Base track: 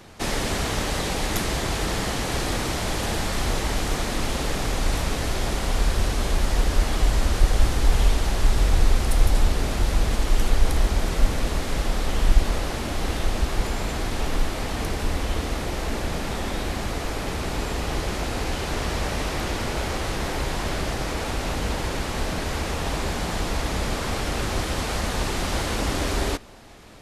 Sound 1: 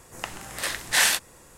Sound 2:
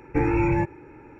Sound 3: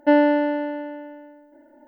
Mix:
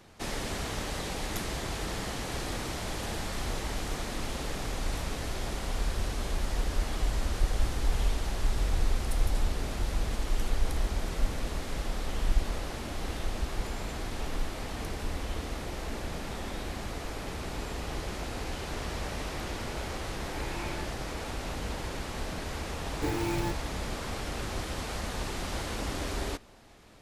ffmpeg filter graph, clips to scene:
-filter_complex "[2:a]asplit=2[a][b];[0:a]volume=-9dB[c];[a]tiltshelf=f=760:g=-8[d];[b]acrusher=bits=3:mode=log:mix=0:aa=0.000001[e];[d]atrim=end=1.19,asetpts=PTS-STARTPTS,volume=-17.5dB,afade=t=in:d=0.004:c=hsin,afade=t=out:st=1.186:d=0.004:c=hsin,adelay=20210[f];[e]atrim=end=1.19,asetpts=PTS-STARTPTS,volume=-10dB,afade=t=in:d=0.004:c=hsin,afade=t=out:st=1.186:d=0.004:c=hsin,adelay=22870[g];[c][f][g]amix=inputs=3:normalize=0"

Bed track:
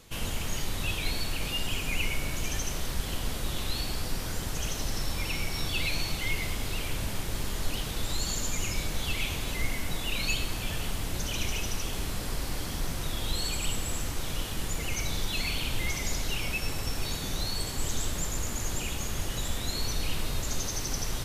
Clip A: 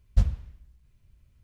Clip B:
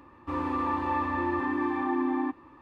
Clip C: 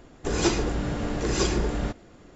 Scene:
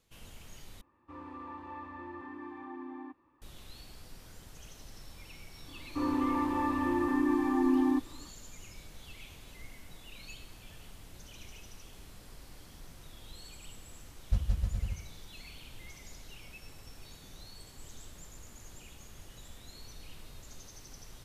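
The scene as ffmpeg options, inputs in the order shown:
-filter_complex "[2:a]asplit=2[a][b];[0:a]volume=-18.5dB[c];[b]equalizer=f=270:t=o:w=0.82:g=8[d];[1:a]aecho=1:1:170|306|414.8|501.8|571.5:0.794|0.631|0.501|0.398|0.316[e];[c]asplit=2[f][g];[f]atrim=end=0.814[h];[a]atrim=end=2.61,asetpts=PTS-STARTPTS,volume=-16dB[i];[g]atrim=start=3.416[j];[d]atrim=end=2.61,asetpts=PTS-STARTPTS,volume=-5dB,afade=t=in:d=0.004:c=hsin,afade=t=out:st=2.606:d=0.004:c=hsin,adelay=5680[k];[e]atrim=end=1.43,asetpts=PTS-STARTPTS,volume=-8dB,afade=t=in:d=0.004:c=hsin,afade=t=out:st=1.426:d=0.004:c=hsin,adelay=14150[l];[h][i]acrossfade=d=0.004:c1=hsin:c2=hsin[m];[m][j]acrossfade=d=0.004:c1=hsin:c2=hsin[n];[n][k][l]amix=inputs=3:normalize=0"

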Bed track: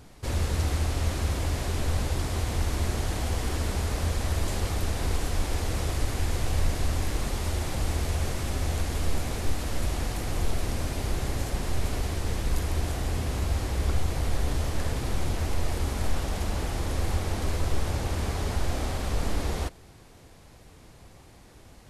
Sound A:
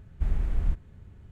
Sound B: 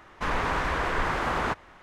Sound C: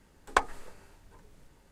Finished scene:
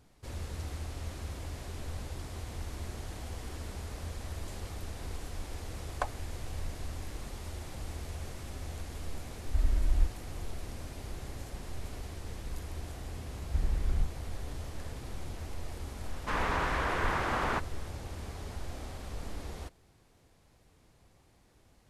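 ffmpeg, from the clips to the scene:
-filter_complex "[1:a]asplit=2[a][b];[0:a]volume=-12.5dB[c];[3:a]highpass=f=620:t=q:w=4.9[d];[a]aecho=1:1:3.2:0.88[e];[d]atrim=end=1.71,asetpts=PTS-STARTPTS,volume=-14dB,afade=t=in:d=0.004:c=hsin,afade=t=out:st=1.706:d=0.004:c=hsin,adelay=249165S[f];[e]atrim=end=1.31,asetpts=PTS-STARTPTS,volume=-5.5dB,afade=t=in:d=0.004:c=hsin,afade=t=out:st=1.306:d=0.004:c=hsin,adelay=9330[g];[b]atrim=end=1.31,asetpts=PTS-STARTPTS,volume=-4dB,afade=t=in:d=0.004:c=hsin,afade=t=out:st=1.306:d=0.004:c=hsin,adelay=13330[h];[2:a]atrim=end=1.82,asetpts=PTS-STARTPTS,volume=-4dB,afade=t=in:d=0.004:c=hsin,afade=t=out:st=1.816:d=0.004:c=hsin,adelay=16060[i];[c][f][g][h][i]amix=inputs=5:normalize=0"

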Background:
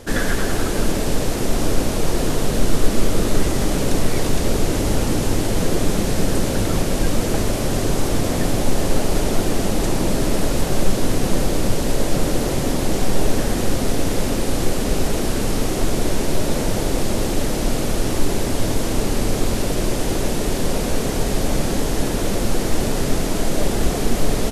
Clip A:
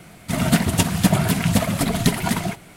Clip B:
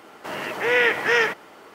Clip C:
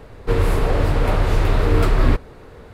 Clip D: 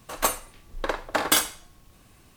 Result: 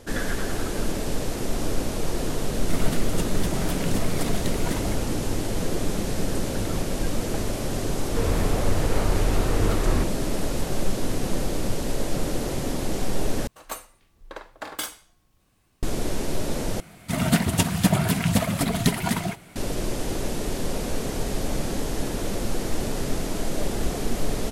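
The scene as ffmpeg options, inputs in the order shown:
-filter_complex "[1:a]asplit=2[a][b];[0:a]volume=-7dB[c];[a]alimiter=limit=-9dB:level=0:latency=1:release=274[d];[c]asplit=3[e][f][g];[e]atrim=end=13.474[h];[4:a]atrim=end=2.36,asetpts=PTS-STARTPTS,volume=-11dB[i];[f]atrim=start=15.826:end=16.804[j];[b]atrim=end=2.76,asetpts=PTS-STARTPTS,volume=-3dB[k];[g]atrim=start=19.556[l];[d]atrim=end=2.76,asetpts=PTS-STARTPTS,volume=-9dB,afade=t=in:d=0.004:c=hsin,afade=t=out:st=2.756:d=0.004:c=hsin,adelay=2400[m];[3:a]atrim=end=2.73,asetpts=PTS-STARTPTS,volume=-7.5dB,afade=t=in:d=0.004:c=hsin,afade=t=out:st=2.726:d=0.004:c=hsin,adelay=7880[n];[h][i]acrossfade=d=0.004:c1=hsin:c2=hsin[o];[o][j]acrossfade=d=0.004:c1=hsin:c2=hsin[p];[p][k]acrossfade=d=0.004:c1=hsin:c2=hsin[q];[q][l]acrossfade=d=0.004:c1=hsin:c2=hsin[r];[r][m][n]amix=inputs=3:normalize=0"

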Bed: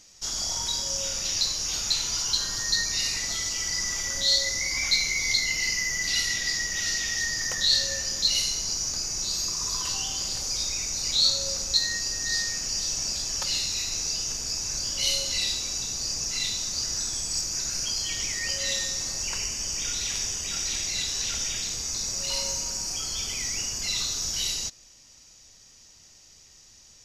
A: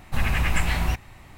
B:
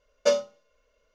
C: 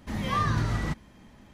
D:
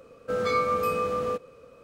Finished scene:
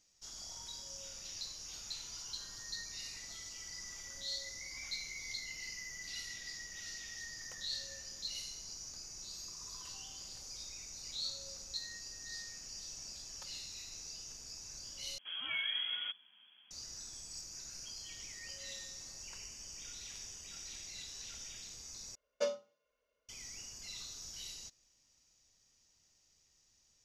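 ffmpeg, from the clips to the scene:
-filter_complex "[0:a]volume=-18.5dB[a];[3:a]lowpass=f=2.9k:t=q:w=0.5098,lowpass=f=2.9k:t=q:w=0.6013,lowpass=f=2.9k:t=q:w=0.9,lowpass=f=2.9k:t=q:w=2.563,afreqshift=-3400[b];[2:a]highpass=f=120:p=1[c];[a]asplit=3[d][e][f];[d]atrim=end=15.184[g];[b]atrim=end=1.53,asetpts=PTS-STARTPTS,volume=-11.5dB[h];[e]atrim=start=16.706:end=22.154[i];[c]atrim=end=1.14,asetpts=PTS-STARTPTS,volume=-12.5dB[j];[f]atrim=start=23.286[k];[g][h]acrossfade=d=0.004:c1=hsin:c2=hsin[l];[l][i]acrossfade=d=0.004:c1=hsin:c2=hsin[m];[m][j]acrossfade=d=0.004:c1=hsin:c2=hsin[n];[n][k]acrossfade=d=0.004:c1=hsin:c2=hsin"

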